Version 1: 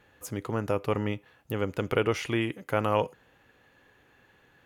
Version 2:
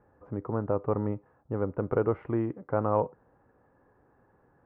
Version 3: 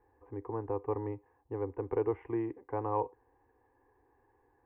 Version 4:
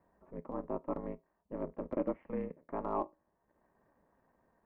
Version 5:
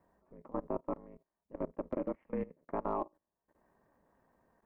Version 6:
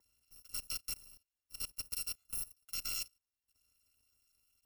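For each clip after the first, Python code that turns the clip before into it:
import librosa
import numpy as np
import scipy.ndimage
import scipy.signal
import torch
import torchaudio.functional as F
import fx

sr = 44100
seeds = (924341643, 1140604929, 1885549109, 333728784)

y1 = scipy.signal.sosfilt(scipy.signal.butter(4, 1200.0, 'lowpass', fs=sr, output='sos'), x)
y2 = fx.peak_eq(y1, sr, hz=180.0, db=-13.5, octaves=0.64)
y2 = fx.fixed_phaser(y2, sr, hz=900.0, stages=8)
y2 = y2 * 10.0 ** (-1.5 / 20.0)
y3 = fx.comb_fb(y2, sr, f0_hz=74.0, decay_s=0.28, harmonics='all', damping=0.0, mix_pct=50)
y3 = y3 * np.sin(2.0 * np.pi * 130.0 * np.arange(len(y3)) / sr)
y3 = fx.transient(y3, sr, attack_db=-2, sustain_db=-7)
y3 = y3 * 10.0 ** (4.5 / 20.0)
y4 = fx.level_steps(y3, sr, step_db=19)
y4 = y4 * 10.0 ** (4.0 / 20.0)
y5 = fx.bit_reversed(y4, sr, seeds[0], block=256)
y5 = y5 * 10.0 ** (-4.0 / 20.0)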